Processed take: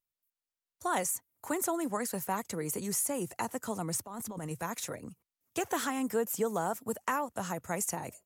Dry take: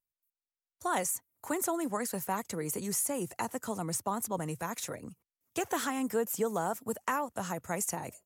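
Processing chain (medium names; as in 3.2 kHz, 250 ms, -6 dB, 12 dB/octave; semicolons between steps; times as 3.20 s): 3.98–4.51 s: compressor with a negative ratio -40 dBFS, ratio -1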